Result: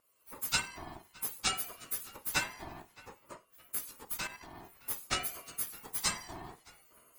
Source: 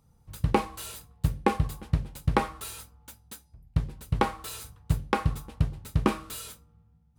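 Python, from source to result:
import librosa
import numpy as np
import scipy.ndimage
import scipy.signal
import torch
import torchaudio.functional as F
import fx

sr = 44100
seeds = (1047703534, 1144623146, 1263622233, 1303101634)

p1 = fx.octave_mirror(x, sr, pivot_hz=1300.0)
p2 = fx.recorder_agc(p1, sr, target_db=-23.0, rise_db_per_s=23.0, max_gain_db=30)
p3 = fx.dynamic_eq(p2, sr, hz=6000.0, q=0.79, threshold_db=-48.0, ratio=4.0, max_db=4)
p4 = fx.level_steps(p3, sr, step_db=11, at=(4.17, 4.63))
p5 = scipy.signal.sosfilt(scipy.signal.butter(2, 450.0, 'highpass', fs=sr, output='sos'), p4)
p6 = fx.vibrato(p5, sr, rate_hz=2.5, depth_cents=14.0)
p7 = p6 + fx.echo_filtered(p6, sr, ms=616, feedback_pct=46, hz=3400.0, wet_db=-21.5, dry=0)
y = fx.ring_lfo(p7, sr, carrier_hz=670.0, swing_pct=25, hz=0.56)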